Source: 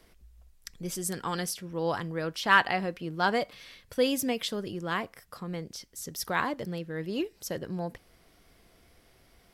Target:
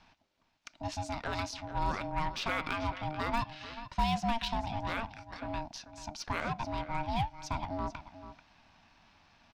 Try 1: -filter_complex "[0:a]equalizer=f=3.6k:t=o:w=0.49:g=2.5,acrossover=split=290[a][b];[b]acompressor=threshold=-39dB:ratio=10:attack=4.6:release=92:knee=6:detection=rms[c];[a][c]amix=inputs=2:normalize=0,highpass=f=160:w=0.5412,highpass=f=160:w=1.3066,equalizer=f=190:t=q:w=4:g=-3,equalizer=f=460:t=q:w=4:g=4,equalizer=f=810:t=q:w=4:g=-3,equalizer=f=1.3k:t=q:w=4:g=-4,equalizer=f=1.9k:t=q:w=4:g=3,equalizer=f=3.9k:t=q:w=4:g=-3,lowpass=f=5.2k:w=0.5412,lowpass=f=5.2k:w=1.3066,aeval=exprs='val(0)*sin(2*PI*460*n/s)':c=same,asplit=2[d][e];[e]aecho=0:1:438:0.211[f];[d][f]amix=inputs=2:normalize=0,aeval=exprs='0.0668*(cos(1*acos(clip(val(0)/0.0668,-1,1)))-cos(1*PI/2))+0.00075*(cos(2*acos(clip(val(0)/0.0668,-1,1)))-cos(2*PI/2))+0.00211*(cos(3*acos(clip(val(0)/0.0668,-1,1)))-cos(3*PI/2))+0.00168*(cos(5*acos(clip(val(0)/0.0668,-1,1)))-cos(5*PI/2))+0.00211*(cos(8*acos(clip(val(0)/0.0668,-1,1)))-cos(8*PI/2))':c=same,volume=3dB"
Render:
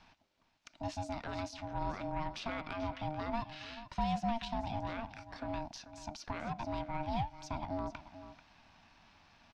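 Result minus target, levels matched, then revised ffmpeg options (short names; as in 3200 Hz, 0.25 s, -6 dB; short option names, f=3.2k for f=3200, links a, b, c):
compressor: peak gain reduction +10 dB
-filter_complex "[0:a]equalizer=f=3.6k:t=o:w=0.49:g=2.5,acrossover=split=290[a][b];[b]acompressor=threshold=-28dB:ratio=10:attack=4.6:release=92:knee=6:detection=rms[c];[a][c]amix=inputs=2:normalize=0,highpass=f=160:w=0.5412,highpass=f=160:w=1.3066,equalizer=f=190:t=q:w=4:g=-3,equalizer=f=460:t=q:w=4:g=4,equalizer=f=810:t=q:w=4:g=-3,equalizer=f=1.3k:t=q:w=4:g=-4,equalizer=f=1.9k:t=q:w=4:g=3,equalizer=f=3.9k:t=q:w=4:g=-3,lowpass=f=5.2k:w=0.5412,lowpass=f=5.2k:w=1.3066,aeval=exprs='val(0)*sin(2*PI*460*n/s)':c=same,asplit=2[d][e];[e]aecho=0:1:438:0.211[f];[d][f]amix=inputs=2:normalize=0,aeval=exprs='0.0668*(cos(1*acos(clip(val(0)/0.0668,-1,1)))-cos(1*PI/2))+0.00075*(cos(2*acos(clip(val(0)/0.0668,-1,1)))-cos(2*PI/2))+0.00211*(cos(3*acos(clip(val(0)/0.0668,-1,1)))-cos(3*PI/2))+0.00168*(cos(5*acos(clip(val(0)/0.0668,-1,1)))-cos(5*PI/2))+0.00211*(cos(8*acos(clip(val(0)/0.0668,-1,1)))-cos(8*PI/2))':c=same,volume=3dB"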